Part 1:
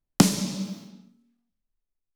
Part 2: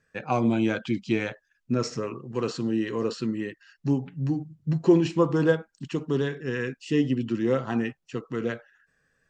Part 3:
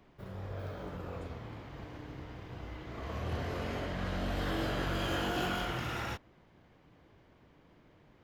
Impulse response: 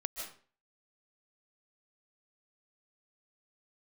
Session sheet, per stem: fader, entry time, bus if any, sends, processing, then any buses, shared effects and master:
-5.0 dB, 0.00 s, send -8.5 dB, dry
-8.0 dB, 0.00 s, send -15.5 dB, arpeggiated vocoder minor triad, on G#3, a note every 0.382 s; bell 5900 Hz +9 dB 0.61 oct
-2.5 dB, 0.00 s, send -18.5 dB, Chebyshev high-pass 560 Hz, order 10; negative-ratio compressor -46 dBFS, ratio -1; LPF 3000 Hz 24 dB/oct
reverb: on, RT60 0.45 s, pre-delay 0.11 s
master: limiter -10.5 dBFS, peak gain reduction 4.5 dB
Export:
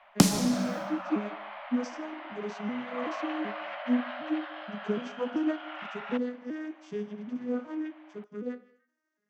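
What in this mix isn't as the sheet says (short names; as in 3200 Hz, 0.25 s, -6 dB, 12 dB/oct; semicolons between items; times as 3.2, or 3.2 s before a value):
stem 3 -2.5 dB -> +6.0 dB; master: missing limiter -10.5 dBFS, peak gain reduction 4.5 dB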